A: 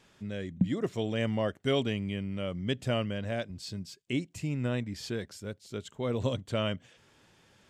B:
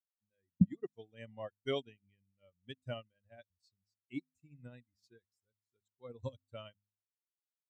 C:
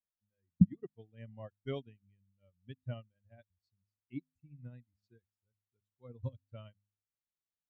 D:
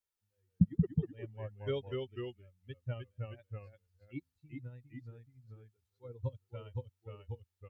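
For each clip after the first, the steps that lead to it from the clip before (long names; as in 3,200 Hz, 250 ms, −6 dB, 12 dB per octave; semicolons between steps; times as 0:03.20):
spectral dynamics exaggerated over time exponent 2; hum removal 51.33 Hz, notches 5; expander for the loud parts 2.5 to 1, over −48 dBFS; level +3.5 dB
bass and treble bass +12 dB, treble −13 dB; level −6 dB
comb filter 2.2 ms, depth 61%; delay with pitch and tempo change per echo 145 ms, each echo −1 semitone, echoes 2; level +1 dB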